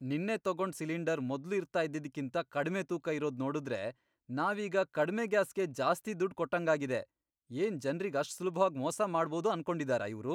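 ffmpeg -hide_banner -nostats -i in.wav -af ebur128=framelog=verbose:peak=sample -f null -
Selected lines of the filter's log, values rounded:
Integrated loudness:
  I:         -34.3 LUFS
  Threshold: -44.4 LUFS
Loudness range:
  LRA:         2.5 LU
  Threshold: -54.5 LUFS
  LRA low:   -35.9 LUFS
  LRA high:  -33.4 LUFS
Sample peak:
  Peak:      -15.5 dBFS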